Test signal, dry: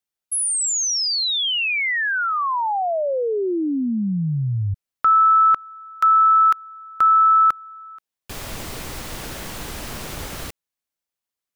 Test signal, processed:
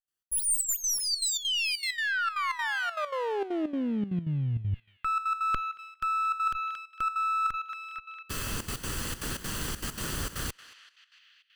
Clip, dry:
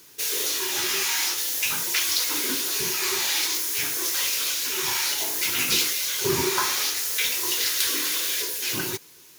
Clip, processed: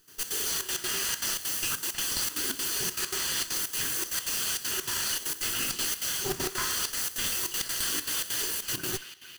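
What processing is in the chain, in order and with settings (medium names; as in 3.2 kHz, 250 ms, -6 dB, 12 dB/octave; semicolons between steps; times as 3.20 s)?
comb filter that takes the minimum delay 0.65 ms; in parallel at -5.5 dB: saturation -18.5 dBFS; on the sum: band-passed feedback delay 227 ms, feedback 79%, band-pass 2.7 kHz, level -14 dB; trance gate ".xx.xxxx.x.xxxx" 197 bpm -12 dB; reverse; compression 12:1, threshold -23 dBFS; reverse; dynamic bell 8.4 kHz, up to +4 dB, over -48 dBFS, Q 3.7; trim -3.5 dB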